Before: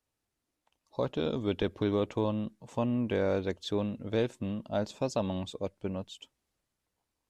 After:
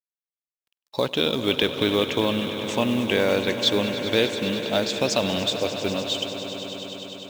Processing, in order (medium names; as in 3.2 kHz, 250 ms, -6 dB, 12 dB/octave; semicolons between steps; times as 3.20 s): gate with hold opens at -52 dBFS; frequency weighting D; in parallel at +1.5 dB: compression 6:1, threshold -41 dBFS, peak gain reduction 17.5 dB; on the sum: companded quantiser 6-bit; on a send: echo with a slow build-up 100 ms, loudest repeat 5, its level -14 dB; on the sum: trim +5.5 dB